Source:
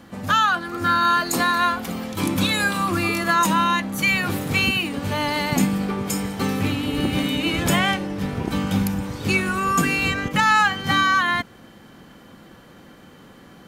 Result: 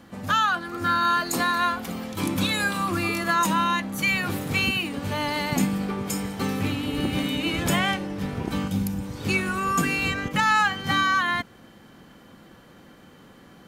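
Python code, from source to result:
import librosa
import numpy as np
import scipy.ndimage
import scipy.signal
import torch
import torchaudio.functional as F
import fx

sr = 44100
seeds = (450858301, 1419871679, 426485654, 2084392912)

y = fx.peak_eq(x, sr, hz=1400.0, db=fx.line((8.67, -10.0), (9.16, -4.0)), octaves=2.9, at=(8.67, 9.16), fade=0.02)
y = F.gain(torch.from_numpy(y), -3.5).numpy()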